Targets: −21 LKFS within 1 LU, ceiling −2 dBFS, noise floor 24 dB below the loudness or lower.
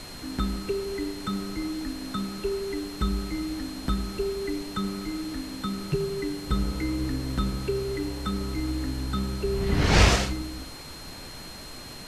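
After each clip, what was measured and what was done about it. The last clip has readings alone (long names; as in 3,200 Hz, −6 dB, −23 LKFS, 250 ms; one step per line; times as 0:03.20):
interfering tone 4,200 Hz; level of the tone −44 dBFS; background noise floor −41 dBFS; target noise floor −53 dBFS; integrated loudness −29.0 LKFS; sample peak −5.0 dBFS; target loudness −21.0 LKFS
→ notch filter 4,200 Hz, Q 30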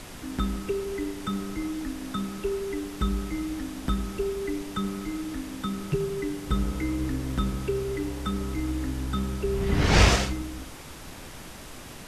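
interfering tone none found; background noise floor −43 dBFS; target noise floor −53 dBFS
→ noise reduction from a noise print 10 dB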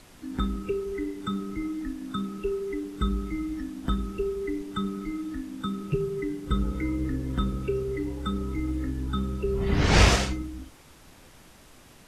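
background noise floor −52 dBFS; target noise floor −53 dBFS
→ noise reduction from a noise print 6 dB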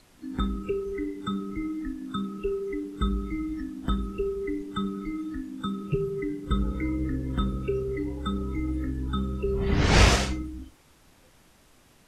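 background noise floor −58 dBFS; integrated loudness −29.0 LKFS; sample peak −5.0 dBFS; target loudness −21.0 LKFS
→ level +8 dB
brickwall limiter −2 dBFS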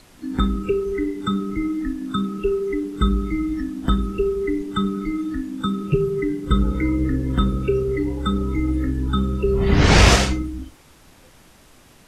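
integrated loudness −21.5 LKFS; sample peak −2.0 dBFS; background noise floor −50 dBFS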